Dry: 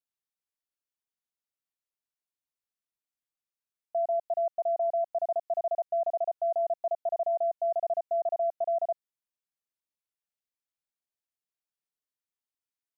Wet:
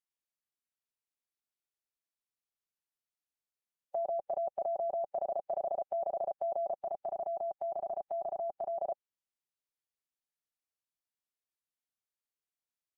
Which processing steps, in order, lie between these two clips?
spectral peaks clipped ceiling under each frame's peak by 18 dB; low-pass that closes with the level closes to 920 Hz, closed at -26.5 dBFS; 6.79–8.79 s: peaking EQ 520 Hz -14 dB 0.27 oct; trim -3.5 dB

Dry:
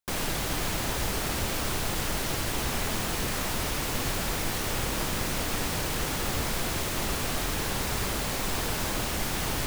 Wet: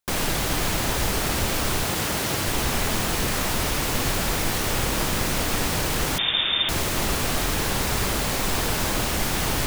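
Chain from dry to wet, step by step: 1.84–2.46 s: high-pass 77 Hz; 6.18–6.69 s: frequency inversion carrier 3.6 kHz; trim +5.5 dB

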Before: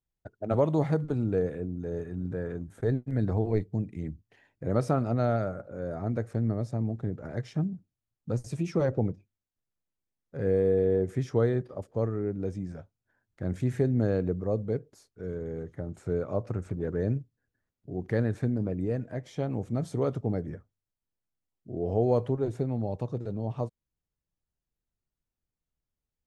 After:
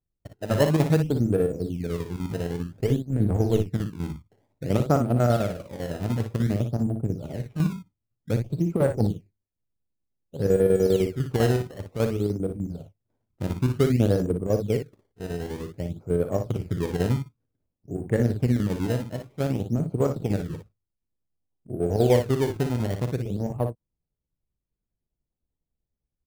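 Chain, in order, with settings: local Wiener filter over 25 samples; level-controlled noise filter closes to 1.1 kHz, open at -24 dBFS; in parallel at -3.5 dB: decimation with a swept rate 22×, swing 160% 0.54 Hz; on the sum: square tremolo 10 Hz, depth 60%, duty 65%; early reflections 40 ms -14.5 dB, 58 ms -7.5 dB; trim +1.5 dB

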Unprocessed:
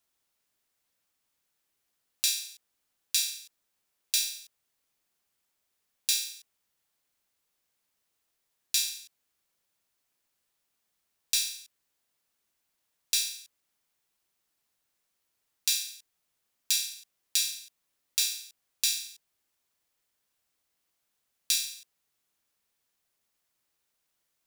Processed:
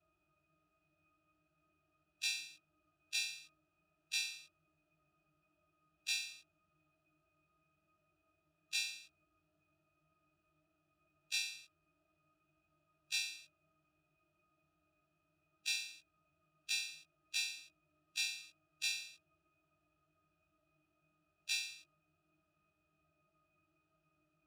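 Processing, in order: short-time spectra conjugated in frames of 40 ms; pitch-class resonator D#, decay 0.13 s; harmonic-percussive split harmonic +7 dB; trim +18 dB

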